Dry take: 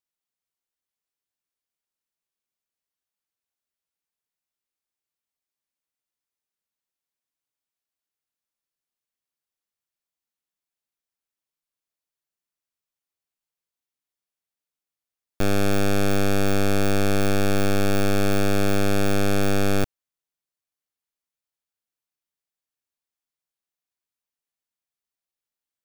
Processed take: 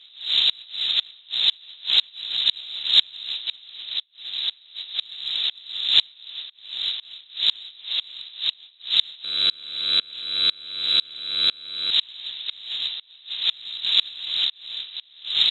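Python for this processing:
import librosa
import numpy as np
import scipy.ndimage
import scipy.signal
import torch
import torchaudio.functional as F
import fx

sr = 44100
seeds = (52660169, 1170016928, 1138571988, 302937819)

p1 = fx.dmg_wind(x, sr, seeds[0], corner_hz=470.0, level_db=-20.0)
p2 = fx.freq_invert(p1, sr, carrier_hz=3900)
p3 = fx.stretch_grains(p2, sr, factor=0.6, grain_ms=28.0)
p4 = fx.over_compress(p3, sr, threshold_db=-25.0, ratio=-1.0)
p5 = p3 + (p4 * librosa.db_to_amplitude(2.5))
p6 = fx.cheby_harmonics(p5, sr, harmonics=(6,), levels_db=(-42,), full_scale_db=4.0)
p7 = fx.tremolo_decay(p6, sr, direction='swelling', hz=2.0, depth_db=31)
y = p7 * librosa.db_to_amplitude(-1.5)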